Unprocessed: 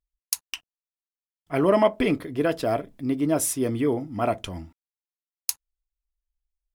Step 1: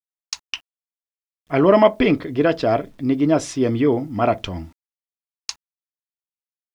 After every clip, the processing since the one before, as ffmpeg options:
ffmpeg -i in.wav -af "lowpass=frequency=5600:width=0.5412,lowpass=frequency=5600:width=1.3066,acrusher=bits=10:mix=0:aa=0.000001,volume=6dB" out.wav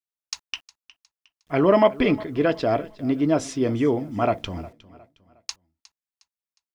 ffmpeg -i in.wav -af "aecho=1:1:360|720|1080:0.1|0.037|0.0137,volume=-3.5dB" out.wav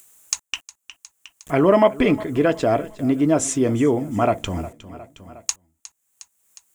ffmpeg -i in.wav -filter_complex "[0:a]asplit=2[link_01][link_02];[link_02]acompressor=threshold=-27dB:ratio=6,volume=1dB[link_03];[link_01][link_03]amix=inputs=2:normalize=0,highshelf=frequency=6000:width_type=q:width=3:gain=7,acompressor=mode=upward:threshold=-30dB:ratio=2.5" out.wav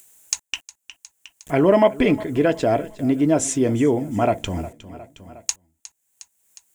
ffmpeg -i in.wav -af "equalizer=frequency=1200:width=6.5:gain=-10" out.wav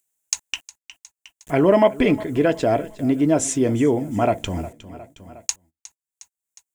ffmpeg -i in.wav -af "agate=range=-23dB:threshold=-47dB:ratio=16:detection=peak" out.wav

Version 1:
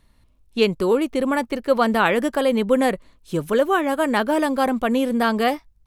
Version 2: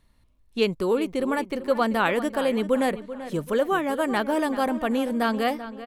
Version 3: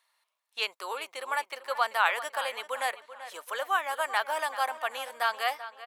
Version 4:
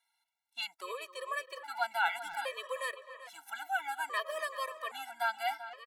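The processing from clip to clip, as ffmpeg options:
ffmpeg -i in.wav -filter_complex "[0:a]asplit=2[link_01][link_02];[link_02]adelay=387,lowpass=frequency=3800:poles=1,volume=-13dB,asplit=2[link_03][link_04];[link_04]adelay=387,lowpass=frequency=3800:poles=1,volume=0.43,asplit=2[link_05][link_06];[link_06]adelay=387,lowpass=frequency=3800:poles=1,volume=0.43,asplit=2[link_07][link_08];[link_08]adelay=387,lowpass=frequency=3800:poles=1,volume=0.43[link_09];[link_01][link_03][link_05][link_07][link_09]amix=inputs=5:normalize=0,volume=-4.5dB" out.wav
ffmpeg -i in.wav -af "highpass=frequency=770:width=0.5412,highpass=frequency=770:width=1.3066" out.wav
ffmpeg -i in.wav -filter_complex "[0:a]asplit=2[link_01][link_02];[link_02]adelay=260,highpass=300,lowpass=3400,asoftclip=type=hard:threshold=-18.5dB,volume=-14dB[link_03];[link_01][link_03]amix=inputs=2:normalize=0,afftfilt=real='re*gt(sin(2*PI*0.61*pts/sr)*(1-2*mod(floor(b*sr/1024/330),2)),0)':imag='im*gt(sin(2*PI*0.61*pts/sr)*(1-2*mod(floor(b*sr/1024/330),2)),0)':win_size=1024:overlap=0.75,volume=-3dB" out.wav

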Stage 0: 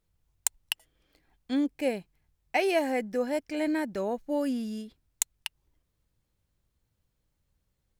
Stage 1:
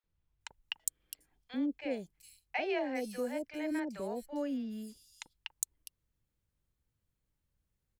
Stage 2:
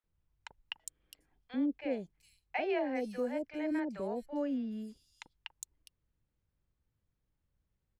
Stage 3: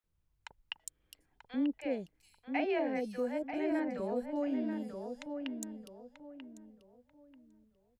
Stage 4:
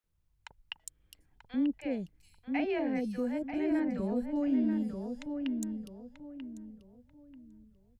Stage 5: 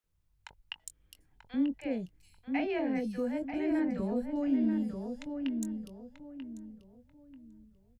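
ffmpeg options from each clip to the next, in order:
ffmpeg -i in.wav -filter_complex "[0:a]acrossover=split=670|4500[link_01][link_02][link_03];[link_01]adelay=40[link_04];[link_03]adelay=410[link_05];[link_04][link_02][link_05]amix=inputs=3:normalize=0,volume=-6dB" out.wav
ffmpeg -i in.wav -af "aemphasis=mode=reproduction:type=75kf,volume=1.5dB" out.wav
ffmpeg -i in.wav -filter_complex "[0:a]asplit=2[link_01][link_02];[link_02]adelay=938,lowpass=frequency=1500:poles=1,volume=-5.5dB,asplit=2[link_03][link_04];[link_04]adelay=938,lowpass=frequency=1500:poles=1,volume=0.32,asplit=2[link_05][link_06];[link_06]adelay=938,lowpass=frequency=1500:poles=1,volume=0.32,asplit=2[link_07][link_08];[link_08]adelay=938,lowpass=frequency=1500:poles=1,volume=0.32[link_09];[link_01][link_03][link_05][link_07][link_09]amix=inputs=5:normalize=0" out.wav
ffmpeg -i in.wav -af "asubboost=boost=5:cutoff=250" out.wav
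ffmpeg -i in.wav -filter_complex "[0:a]asplit=2[link_01][link_02];[link_02]adelay=22,volume=-12.5dB[link_03];[link_01][link_03]amix=inputs=2:normalize=0" out.wav

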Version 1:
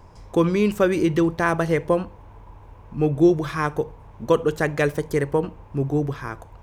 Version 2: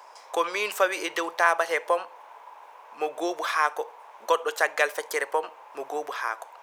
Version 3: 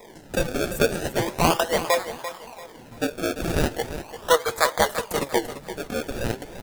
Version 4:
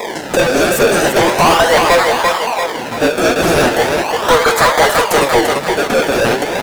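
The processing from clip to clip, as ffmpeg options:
ffmpeg -i in.wav -filter_complex "[0:a]highpass=frequency=630:width=0.5412,highpass=frequency=630:width=1.3066,asplit=2[link_01][link_02];[link_02]acompressor=threshold=-32dB:ratio=6,volume=0.5dB[link_03];[link_01][link_03]amix=inputs=2:normalize=0" out.wav
ffmpeg -i in.wav -filter_complex "[0:a]acrossover=split=6400[link_01][link_02];[link_01]acrusher=samples=30:mix=1:aa=0.000001:lfo=1:lforange=30:lforate=0.38[link_03];[link_03][link_02]amix=inputs=2:normalize=0,aecho=1:1:342|684|1026:0.266|0.0851|0.0272,flanger=delay=4:depth=5.1:regen=63:speed=1.2:shape=triangular,volume=7dB" out.wav
ffmpeg -i in.wav -filter_complex "[0:a]asplit=2[link_01][link_02];[link_02]highpass=frequency=720:poles=1,volume=33dB,asoftclip=type=tanh:threshold=-4dB[link_03];[link_01][link_03]amix=inputs=2:normalize=0,lowpass=frequency=3900:poles=1,volume=-6dB,volume=2dB" out.wav

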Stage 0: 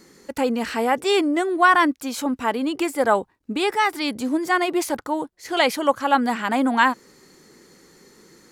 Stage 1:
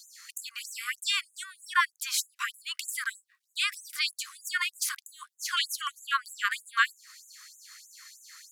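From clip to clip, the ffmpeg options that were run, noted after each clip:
ffmpeg -i in.wav -af "acompressor=threshold=-29dB:ratio=2,equalizer=frequency=190:width=3.1:gain=-11.5,afftfilt=real='re*gte(b*sr/1024,1000*pow(6400/1000,0.5+0.5*sin(2*PI*3.2*pts/sr)))':imag='im*gte(b*sr/1024,1000*pow(6400/1000,0.5+0.5*sin(2*PI*3.2*pts/sr)))':win_size=1024:overlap=0.75,volume=6dB" out.wav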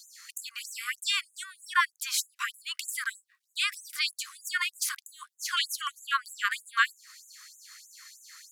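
ffmpeg -i in.wav -af anull out.wav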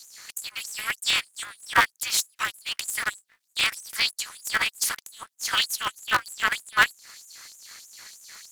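ffmpeg -i in.wav -af "aeval=exprs='val(0)*sgn(sin(2*PI*110*n/s))':channel_layout=same,volume=5dB" out.wav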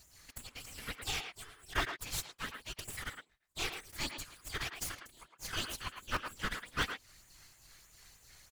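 ffmpeg -i in.wav -filter_complex "[0:a]aeval=exprs='max(val(0),0)':channel_layout=same,afftfilt=real='hypot(re,im)*cos(2*PI*random(0))':imag='hypot(re,im)*sin(2*PI*random(1))':win_size=512:overlap=0.75,asplit=2[link_01][link_02];[link_02]adelay=110,highpass=300,lowpass=3400,asoftclip=type=hard:threshold=-25.5dB,volume=-6dB[link_03];[link_01][link_03]amix=inputs=2:normalize=0,volume=-4dB" out.wav

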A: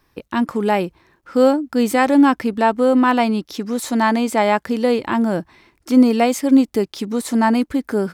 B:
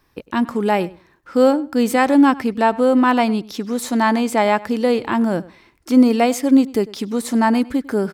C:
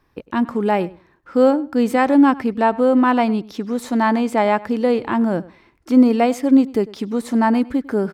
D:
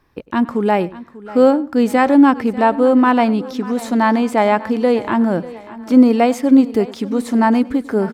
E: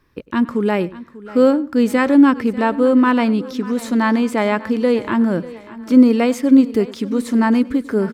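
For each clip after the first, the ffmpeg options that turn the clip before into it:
ffmpeg -i in.wav -filter_complex "[0:a]asplit=2[link_01][link_02];[link_02]adelay=100,lowpass=frequency=3900:poles=1,volume=-20dB,asplit=2[link_03][link_04];[link_04]adelay=100,lowpass=frequency=3900:poles=1,volume=0.16[link_05];[link_01][link_03][link_05]amix=inputs=3:normalize=0" out.wav
ffmpeg -i in.wav -af "highshelf=frequency=3400:gain=-10" out.wav
ffmpeg -i in.wav -af "aecho=1:1:593|1186|1779|2372:0.126|0.0592|0.0278|0.0131,volume=2.5dB" out.wav
ffmpeg -i in.wav -af "equalizer=frequency=760:width_type=o:width=0.47:gain=-11" out.wav

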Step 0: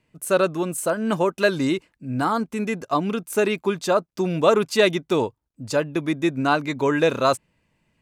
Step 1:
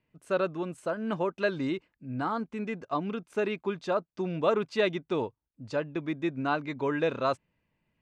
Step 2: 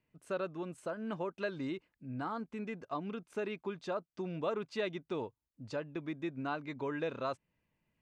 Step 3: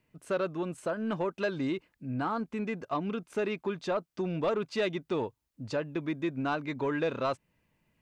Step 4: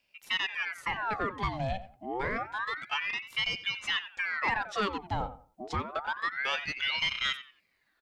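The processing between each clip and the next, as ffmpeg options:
ffmpeg -i in.wav -af "lowpass=3600,volume=-8.5dB" out.wav
ffmpeg -i in.wav -af "acompressor=threshold=-37dB:ratio=1.5,volume=-4dB" out.wav
ffmpeg -i in.wav -af "asoftclip=type=tanh:threshold=-28dB,volume=7.5dB" out.wav
ffmpeg -i in.wav -filter_complex "[0:a]asplit=2[link_01][link_02];[link_02]adelay=90,lowpass=frequency=1500:poles=1,volume=-12.5dB,asplit=2[link_03][link_04];[link_04]adelay=90,lowpass=frequency=1500:poles=1,volume=0.27,asplit=2[link_05][link_06];[link_06]adelay=90,lowpass=frequency=1500:poles=1,volume=0.27[link_07];[link_01][link_03][link_05][link_07]amix=inputs=4:normalize=0,aeval=exprs='val(0)*sin(2*PI*1500*n/s+1500*0.75/0.28*sin(2*PI*0.28*n/s))':channel_layout=same,volume=2dB" out.wav

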